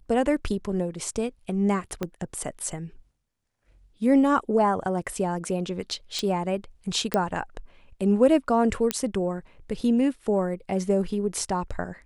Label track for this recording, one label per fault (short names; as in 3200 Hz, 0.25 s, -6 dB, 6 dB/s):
2.030000	2.030000	pop -15 dBFS
6.190000	6.190000	pop -15 dBFS
7.140000	7.140000	pop -9 dBFS
8.910000	8.910000	pop -8 dBFS